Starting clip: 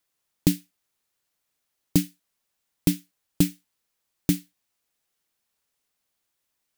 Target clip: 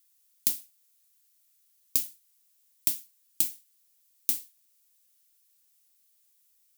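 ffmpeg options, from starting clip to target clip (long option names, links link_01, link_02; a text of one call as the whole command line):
ffmpeg -i in.wav -af "aderivative,acompressor=threshold=-31dB:ratio=6,volume=8.5dB" out.wav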